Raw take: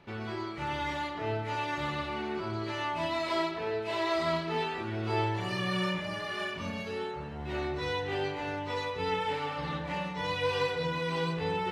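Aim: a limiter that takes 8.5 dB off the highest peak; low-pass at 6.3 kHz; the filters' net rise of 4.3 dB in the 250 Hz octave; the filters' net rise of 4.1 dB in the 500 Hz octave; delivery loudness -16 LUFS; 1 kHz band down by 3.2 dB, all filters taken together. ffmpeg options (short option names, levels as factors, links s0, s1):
-af "lowpass=6300,equalizer=f=250:t=o:g=5,equalizer=f=500:t=o:g=5,equalizer=f=1000:t=o:g=-5.5,volume=7.08,alimiter=limit=0.422:level=0:latency=1"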